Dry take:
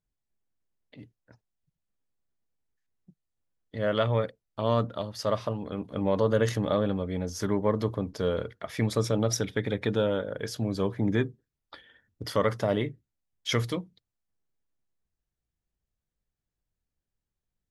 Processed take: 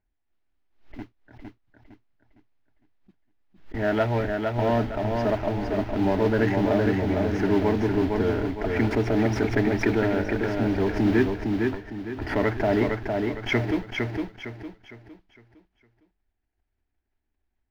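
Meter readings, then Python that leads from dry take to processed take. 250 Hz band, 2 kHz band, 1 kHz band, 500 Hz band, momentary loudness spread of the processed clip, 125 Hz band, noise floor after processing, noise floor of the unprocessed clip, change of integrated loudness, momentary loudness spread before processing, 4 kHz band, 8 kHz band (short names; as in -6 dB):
+7.5 dB, +8.5 dB, +5.0 dB, +3.5 dB, 11 LU, +3.0 dB, -78 dBFS, under -85 dBFS, +4.0 dB, 9 LU, -2.0 dB, n/a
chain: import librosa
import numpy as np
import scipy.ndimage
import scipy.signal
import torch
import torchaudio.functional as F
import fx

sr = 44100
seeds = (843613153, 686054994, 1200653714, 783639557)

p1 = fx.schmitt(x, sr, flips_db=-38.5)
p2 = x + F.gain(torch.from_numpy(p1), -7.0).numpy()
p3 = fx.fixed_phaser(p2, sr, hz=770.0, stages=8)
p4 = fx.mod_noise(p3, sr, seeds[0], snr_db=11)
p5 = fx.air_absorb(p4, sr, metres=310.0)
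p6 = p5 + fx.echo_feedback(p5, sr, ms=458, feedback_pct=36, wet_db=-4.0, dry=0)
p7 = fx.pre_swell(p6, sr, db_per_s=130.0)
y = F.gain(torch.from_numpy(p7), 7.5).numpy()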